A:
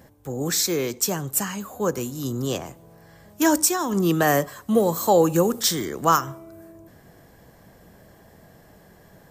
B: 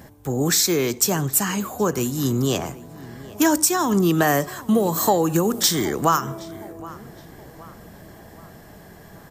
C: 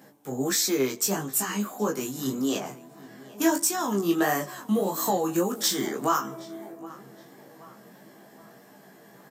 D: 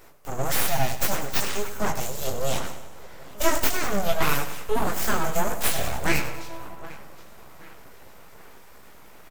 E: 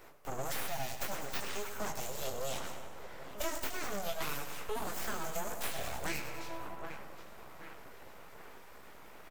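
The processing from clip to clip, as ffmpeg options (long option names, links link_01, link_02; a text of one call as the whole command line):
ffmpeg -i in.wav -filter_complex "[0:a]acompressor=threshold=-23dB:ratio=3,equalizer=frequency=520:width=7.5:gain=-7,asplit=2[link_01][link_02];[link_02]adelay=770,lowpass=frequency=2900:poles=1,volume=-19dB,asplit=2[link_03][link_04];[link_04]adelay=770,lowpass=frequency=2900:poles=1,volume=0.5,asplit=2[link_05][link_06];[link_06]adelay=770,lowpass=frequency=2900:poles=1,volume=0.5,asplit=2[link_07][link_08];[link_08]adelay=770,lowpass=frequency=2900:poles=1,volume=0.5[link_09];[link_01][link_03][link_05][link_07][link_09]amix=inputs=5:normalize=0,volume=7dB" out.wav
ffmpeg -i in.wav -filter_complex "[0:a]highpass=frequency=170:width=0.5412,highpass=frequency=170:width=1.3066,flanger=delay=18.5:depth=5.8:speed=1.6,asplit=2[link_01][link_02];[link_02]adelay=15,volume=-5dB[link_03];[link_01][link_03]amix=inputs=2:normalize=0,volume=-4dB" out.wav
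ffmpeg -i in.wav -filter_complex "[0:a]aeval=exprs='abs(val(0))':channel_layout=same,asplit=2[link_01][link_02];[link_02]aecho=0:1:98|196|294|392|490|588:0.251|0.133|0.0706|0.0374|0.0198|0.0105[link_03];[link_01][link_03]amix=inputs=2:normalize=0,volume=4dB" out.wav
ffmpeg -i in.wav -filter_complex "[0:a]bass=frequency=250:gain=-4,treble=frequency=4000:gain=-5,acrossover=split=590|3600[link_01][link_02][link_03];[link_01]acompressor=threshold=-34dB:ratio=4[link_04];[link_02]acompressor=threshold=-40dB:ratio=4[link_05];[link_03]acompressor=threshold=-39dB:ratio=4[link_06];[link_04][link_05][link_06]amix=inputs=3:normalize=0,volume=-2.5dB" out.wav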